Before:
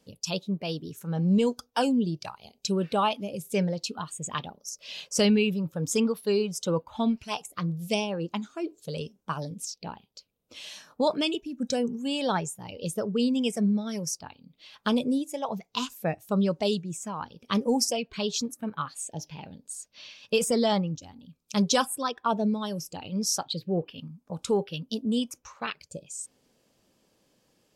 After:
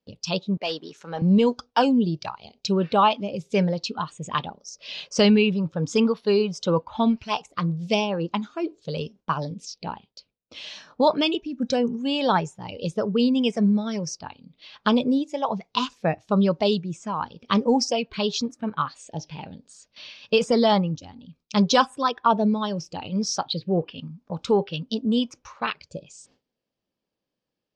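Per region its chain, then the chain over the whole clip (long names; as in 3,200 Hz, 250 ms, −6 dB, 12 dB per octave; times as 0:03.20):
0:00.57–0:01.22: Bessel high-pass filter 550 Hz + leveller curve on the samples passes 1
whole clip: low-pass filter 5,300 Hz 24 dB per octave; dynamic equaliser 1,000 Hz, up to +4 dB, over −46 dBFS, Q 2; noise gate with hold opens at −46 dBFS; level +4.5 dB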